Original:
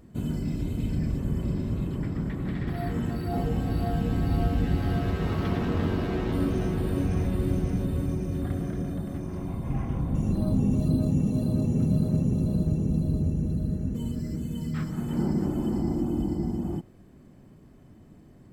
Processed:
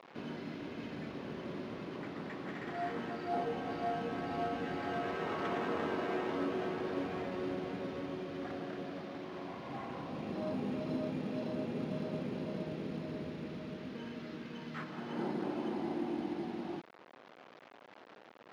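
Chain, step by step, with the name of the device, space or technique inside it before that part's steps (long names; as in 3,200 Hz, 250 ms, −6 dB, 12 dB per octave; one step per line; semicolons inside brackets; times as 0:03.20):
early 8-bit sampler (sample-rate reduction 9,300 Hz, jitter 0%; bit reduction 8 bits)
high-pass filter 480 Hz 12 dB per octave
high-frequency loss of the air 250 metres
level +1 dB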